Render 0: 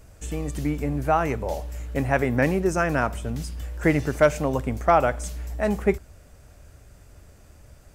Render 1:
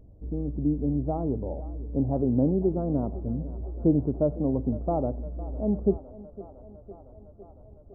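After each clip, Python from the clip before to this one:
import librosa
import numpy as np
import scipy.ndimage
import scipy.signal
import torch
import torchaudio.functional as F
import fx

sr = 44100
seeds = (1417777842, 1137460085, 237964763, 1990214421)

y = scipy.ndimage.gaussian_filter1d(x, 14.0, mode='constant')
y = fx.peak_eq(y, sr, hz=270.0, db=5.5, octaves=0.87)
y = fx.echo_thinned(y, sr, ms=507, feedback_pct=80, hz=270.0, wet_db=-16.0)
y = y * 10.0 ** (-2.0 / 20.0)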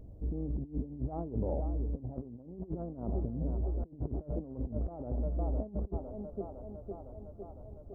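y = fx.over_compress(x, sr, threshold_db=-32.0, ratio=-0.5)
y = y * 10.0 ** (-3.0 / 20.0)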